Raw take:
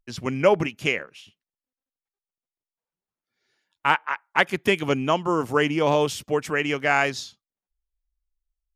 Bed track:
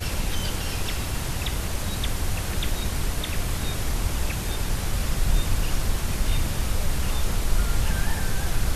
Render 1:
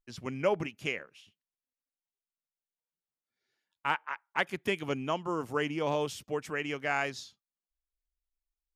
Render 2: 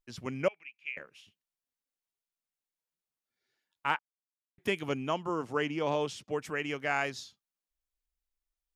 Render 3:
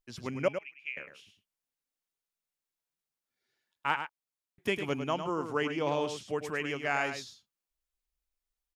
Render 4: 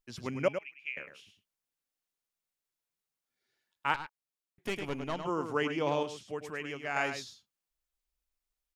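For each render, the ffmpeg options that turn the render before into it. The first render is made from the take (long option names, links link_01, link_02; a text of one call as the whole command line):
ffmpeg -i in.wav -af "volume=-10dB" out.wav
ffmpeg -i in.wav -filter_complex "[0:a]asettb=1/sr,asplit=3[link_01][link_02][link_03];[link_01]atrim=end=0.484[link_04];[link_02]atrim=start=0.48:end=0.97,asetpts=PTS-STARTPTS,afade=type=in:duration=0.004:curve=qsin,afade=type=out:start_time=0.486:duration=0.004:curve=qsin,bandpass=frequency=2400:width_type=q:width=9.4[link_05];[link_03]atrim=start=0.966[link_06];[link_04][link_05]acrossfade=duration=0.004:curve1=hsin:curve2=qsin[link_07];[link_07][link_06]acrossfade=duration=0.004:curve1=qsin:curve2=hsin,asettb=1/sr,asplit=3[link_08][link_09][link_10];[link_08]atrim=end=5.294[link_11];[link_09]atrim=start=5.29:end=6.31,asetpts=PTS-STARTPTS,afade=type=in:duration=0.004:curve=qsin,afade=type=out:start_time=1.016:duration=0.004:curve=qsin,highpass=110,lowpass=7500[link_12];[link_10]atrim=start=6.306[link_13];[link_11][link_12]acrossfade=duration=0.004:curve1=hsin:curve2=qsin[link_14];[link_14][link_13]acrossfade=duration=0.004:curve1=qsin:curve2=hsin,asplit=3[link_15][link_16][link_17];[link_15]atrim=end=3.99,asetpts=PTS-STARTPTS,afade=type=out:start_time=3.986:duration=0.004:curve=hsin[link_18];[link_16]atrim=start=3.99:end=4.58,asetpts=PTS-STARTPTS,volume=0[link_19];[link_17]atrim=start=4.58,asetpts=PTS-STARTPTS,afade=type=in:duration=0.004:curve=hsin[link_20];[link_18][link_19][link_20]concat=n=3:v=0:a=1" out.wav
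ffmpeg -i in.wav -af "aecho=1:1:104:0.376" out.wav
ffmpeg -i in.wav -filter_complex "[0:a]asettb=1/sr,asplit=3[link_01][link_02][link_03];[link_01]atrim=end=3.944[link_04];[link_02]atrim=start=3.94:end=5.25,asetpts=PTS-STARTPTS,afade=type=in:duration=0.004:curve=qsin,afade=type=out:start_time=1.306:duration=0.004:curve=qsin,aeval=exprs='(tanh(25.1*val(0)+0.6)-tanh(0.6))/25.1':channel_layout=same[link_05];[link_03]atrim=start=5.246[link_06];[link_04][link_05]acrossfade=duration=0.004:curve1=hsin:curve2=qsin[link_07];[link_07][link_06]acrossfade=duration=0.004:curve1=qsin:curve2=hsin,asplit=3[link_08][link_09][link_10];[link_08]atrim=end=6.032[link_11];[link_09]atrim=start=6.028:end=6.962,asetpts=PTS-STARTPTS,volume=-5dB[link_12];[link_10]atrim=start=6.958[link_13];[link_11][link_12]acrossfade=duration=0.004:curve1=hsin:curve2=hsin[link_14];[link_14][link_13]acrossfade=duration=0.004:curve1=hsin:curve2=hsin" out.wav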